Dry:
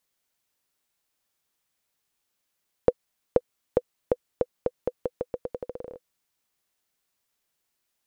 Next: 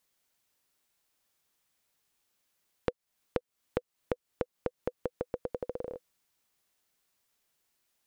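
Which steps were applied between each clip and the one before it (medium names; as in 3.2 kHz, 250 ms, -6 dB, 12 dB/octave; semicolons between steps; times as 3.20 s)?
compression 4:1, threshold -32 dBFS, peak gain reduction 15 dB; trim +1.5 dB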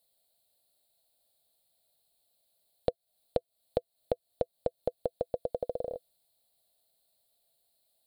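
FFT filter 120 Hz 0 dB, 230 Hz -3 dB, 370 Hz -5 dB, 670 Hz +11 dB, 1 kHz -11 dB, 1.9 kHz -12 dB, 2.8 kHz -7 dB, 4.2 kHz +10 dB, 5.9 kHz -17 dB, 8.6 kHz +4 dB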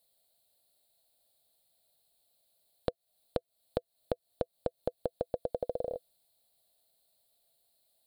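compression, threshold -28 dBFS, peak gain reduction 7 dB; trim +1 dB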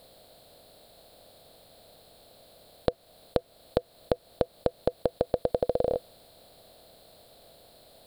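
spectral levelling over time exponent 0.6; trim +6 dB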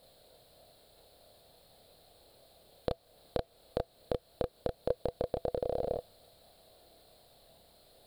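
chorus voices 4, 0.38 Hz, delay 30 ms, depth 1.5 ms; trim -3 dB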